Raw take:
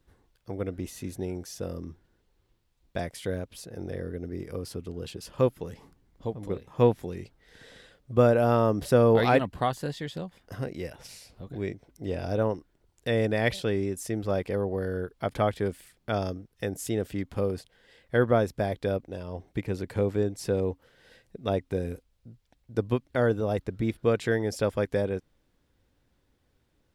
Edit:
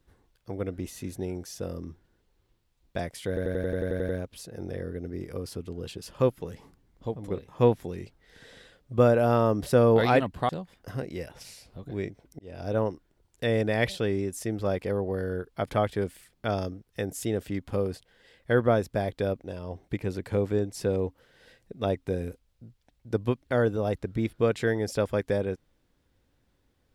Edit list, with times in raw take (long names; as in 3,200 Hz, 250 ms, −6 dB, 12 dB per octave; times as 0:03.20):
0:03.28: stutter 0.09 s, 10 plays
0:09.68–0:10.13: remove
0:12.03–0:12.43: fade in